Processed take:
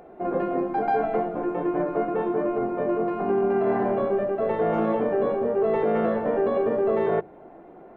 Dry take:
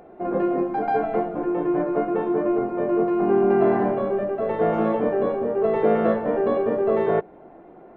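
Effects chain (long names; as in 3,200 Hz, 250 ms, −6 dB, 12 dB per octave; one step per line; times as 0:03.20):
brickwall limiter −14.5 dBFS, peak gain reduction 6.5 dB
mains-hum notches 50/100/150/200/250/300/350 Hz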